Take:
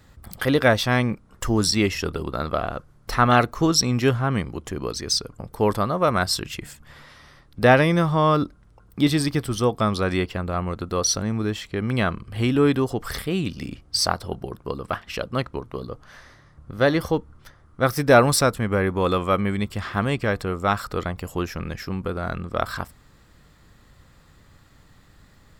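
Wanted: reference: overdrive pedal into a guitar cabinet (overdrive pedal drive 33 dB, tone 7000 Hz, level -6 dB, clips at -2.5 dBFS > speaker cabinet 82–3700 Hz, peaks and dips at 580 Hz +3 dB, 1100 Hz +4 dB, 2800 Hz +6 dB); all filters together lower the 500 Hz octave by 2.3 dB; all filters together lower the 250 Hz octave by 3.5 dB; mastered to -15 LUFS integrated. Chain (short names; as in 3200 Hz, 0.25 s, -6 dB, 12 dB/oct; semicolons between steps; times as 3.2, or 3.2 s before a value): bell 250 Hz -3.5 dB; bell 500 Hz -4 dB; overdrive pedal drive 33 dB, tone 7000 Hz, level -6 dB, clips at -2.5 dBFS; speaker cabinet 82–3700 Hz, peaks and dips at 580 Hz +3 dB, 1100 Hz +4 dB, 2800 Hz +6 dB; gain -3.5 dB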